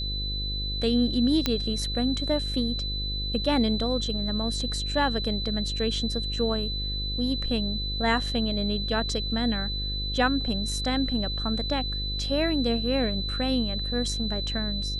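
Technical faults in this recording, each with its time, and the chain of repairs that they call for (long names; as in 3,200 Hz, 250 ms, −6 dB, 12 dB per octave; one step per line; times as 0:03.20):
mains buzz 50 Hz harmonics 11 −32 dBFS
whistle 4,000 Hz −31 dBFS
0:01.46: click −9 dBFS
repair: click removal
hum removal 50 Hz, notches 11
notch filter 4,000 Hz, Q 30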